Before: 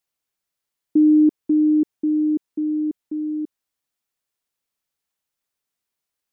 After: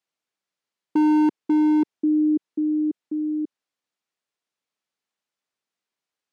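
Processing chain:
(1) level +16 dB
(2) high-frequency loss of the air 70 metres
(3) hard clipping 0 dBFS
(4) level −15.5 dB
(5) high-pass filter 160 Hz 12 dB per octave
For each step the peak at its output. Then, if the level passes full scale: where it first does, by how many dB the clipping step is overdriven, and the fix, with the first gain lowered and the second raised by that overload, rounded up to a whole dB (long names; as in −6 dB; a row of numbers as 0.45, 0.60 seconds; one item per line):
+6.0, +6.0, 0.0, −15.5, −12.0 dBFS
step 1, 6.0 dB
step 1 +10 dB, step 4 −9.5 dB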